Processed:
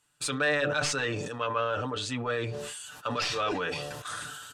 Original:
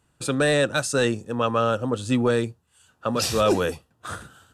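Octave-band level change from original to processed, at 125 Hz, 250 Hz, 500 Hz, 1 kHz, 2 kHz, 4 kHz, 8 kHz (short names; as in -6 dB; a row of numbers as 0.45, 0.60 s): -8.5, -11.5, -9.0, -4.5, -1.5, -3.0, -4.5 dB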